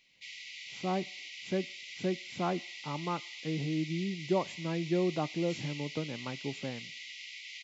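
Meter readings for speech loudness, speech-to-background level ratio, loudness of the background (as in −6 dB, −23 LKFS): −35.5 LKFS, 7.5 dB, −43.0 LKFS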